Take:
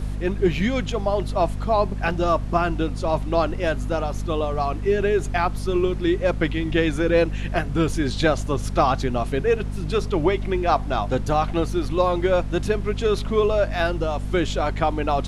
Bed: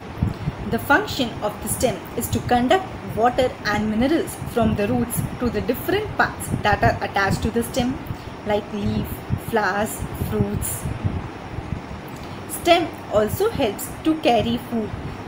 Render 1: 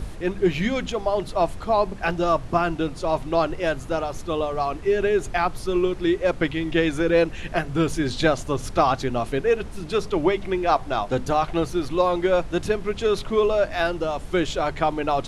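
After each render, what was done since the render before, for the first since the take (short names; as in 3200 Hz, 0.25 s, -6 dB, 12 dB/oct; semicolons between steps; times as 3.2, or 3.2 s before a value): notches 50/100/150/200/250 Hz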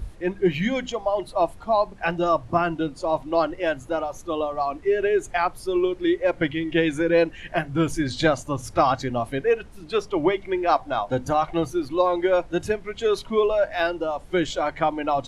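noise print and reduce 10 dB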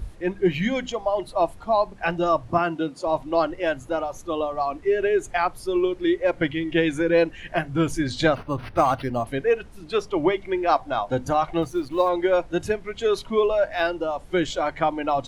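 2.58–3.07 HPF 160 Hz; 8.35–9.27 decimation joined by straight lines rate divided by 6×; 11.62–12.09 G.711 law mismatch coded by A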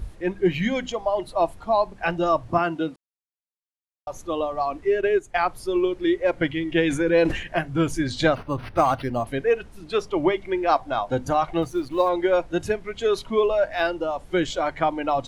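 2.96–4.07 mute; 4.95–5.45 transient shaper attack +1 dB, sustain -9 dB; 6.82–7.47 sustainer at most 81 dB/s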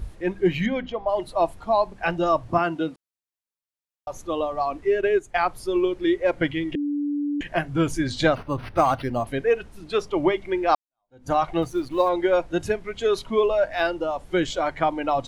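0.66–1.09 air absorption 290 m; 6.75–7.41 bleep 290 Hz -22.5 dBFS; 10.75–11.31 fade in exponential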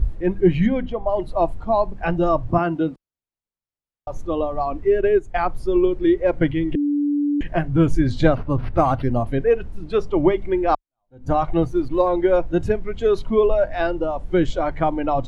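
tilt -3 dB/oct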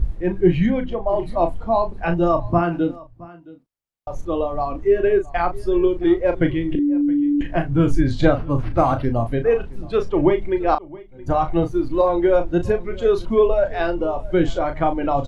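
doubler 35 ms -8 dB; echo 0.669 s -21 dB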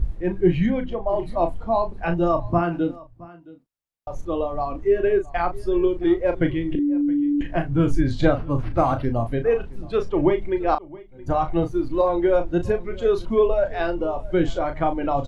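gain -2.5 dB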